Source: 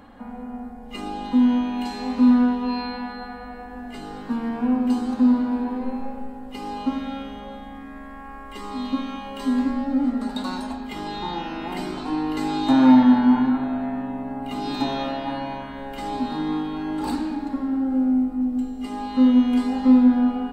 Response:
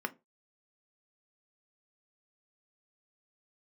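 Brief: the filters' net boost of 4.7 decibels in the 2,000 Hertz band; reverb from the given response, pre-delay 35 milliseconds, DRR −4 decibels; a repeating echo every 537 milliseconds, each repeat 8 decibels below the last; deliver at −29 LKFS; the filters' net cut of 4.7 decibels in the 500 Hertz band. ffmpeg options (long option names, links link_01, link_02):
-filter_complex "[0:a]equalizer=frequency=500:width_type=o:gain=-6.5,equalizer=frequency=2000:width_type=o:gain=6.5,aecho=1:1:537|1074|1611|2148|2685:0.398|0.159|0.0637|0.0255|0.0102,asplit=2[link_01][link_02];[1:a]atrim=start_sample=2205,adelay=35[link_03];[link_02][link_03]afir=irnorm=-1:irlink=0,volume=0dB[link_04];[link_01][link_04]amix=inputs=2:normalize=0,volume=-10.5dB"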